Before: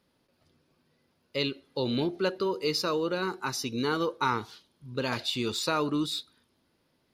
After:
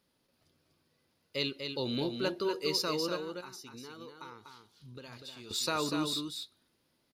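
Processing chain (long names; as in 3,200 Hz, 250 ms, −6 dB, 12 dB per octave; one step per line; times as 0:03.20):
high-shelf EQ 3,700 Hz +7 dB
0:03.16–0:05.51: downward compressor 6 to 1, threshold −41 dBFS, peak gain reduction 18 dB
single-tap delay 244 ms −6 dB
level −5.5 dB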